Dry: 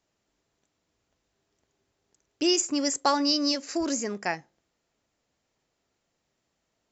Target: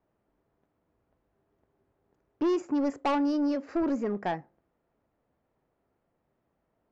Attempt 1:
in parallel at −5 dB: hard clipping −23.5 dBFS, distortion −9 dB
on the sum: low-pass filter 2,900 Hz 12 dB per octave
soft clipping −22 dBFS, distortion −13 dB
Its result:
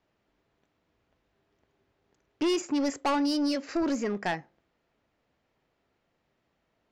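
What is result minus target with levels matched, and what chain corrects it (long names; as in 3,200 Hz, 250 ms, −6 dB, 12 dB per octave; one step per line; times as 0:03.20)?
4,000 Hz band +10.0 dB; hard clipping: distortion +11 dB
in parallel at −5 dB: hard clipping −16 dBFS, distortion −21 dB
on the sum: low-pass filter 1,200 Hz 12 dB per octave
soft clipping −22 dBFS, distortion −12 dB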